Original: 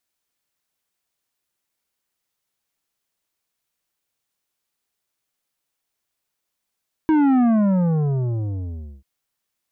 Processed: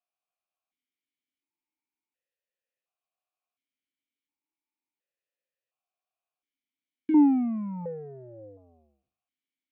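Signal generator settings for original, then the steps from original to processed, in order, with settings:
sub drop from 320 Hz, over 1.94 s, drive 10 dB, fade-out 1.62 s, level -14.5 dB
spectral trails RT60 0.46 s; vowel sequencer 1.4 Hz

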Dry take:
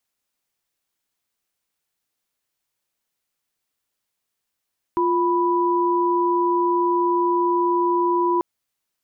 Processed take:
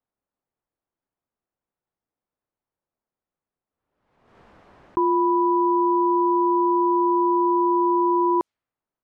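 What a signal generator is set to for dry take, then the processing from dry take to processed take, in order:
chord F4/B5 sine, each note -19.5 dBFS 3.44 s
low-pass opened by the level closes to 980 Hz, open at -16 dBFS; backwards sustainer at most 56 dB/s

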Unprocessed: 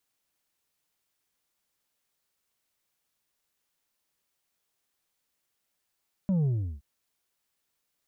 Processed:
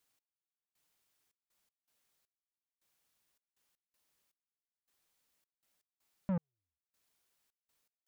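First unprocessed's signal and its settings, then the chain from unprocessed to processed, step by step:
sub drop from 200 Hz, over 0.52 s, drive 4.5 dB, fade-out 0.36 s, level -23 dB
soft clip -30 dBFS; step gate "x...xxx.x.x" 80 bpm -60 dB; Doppler distortion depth 0.17 ms

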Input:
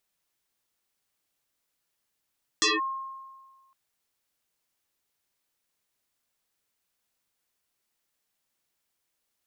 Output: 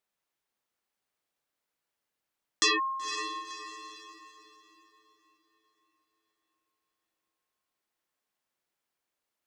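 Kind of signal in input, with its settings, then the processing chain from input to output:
FM tone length 1.11 s, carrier 1070 Hz, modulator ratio 0.7, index 8.7, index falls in 0.18 s linear, decay 1.53 s, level -18.5 dB
low shelf 220 Hz -9 dB; on a send: diffused feedback echo 0.51 s, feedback 42%, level -9 dB; on the sum: mismatched tape noise reduction decoder only

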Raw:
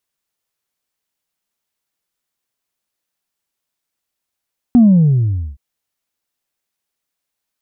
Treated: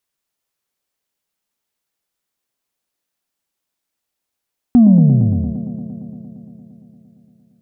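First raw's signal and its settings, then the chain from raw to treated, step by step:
sub drop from 250 Hz, over 0.82 s, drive 0 dB, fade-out 0.82 s, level -4.5 dB
on a send: band-limited delay 0.115 s, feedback 81%, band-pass 410 Hz, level -7 dB

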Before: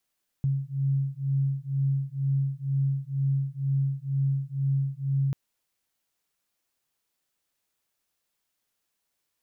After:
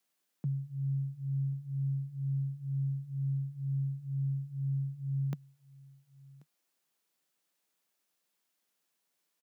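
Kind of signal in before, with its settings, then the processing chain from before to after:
beating tones 136 Hz, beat 2.1 Hz, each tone -27 dBFS 4.89 s
elliptic high-pass 150 Hz; echo 1.085 s -23 dB

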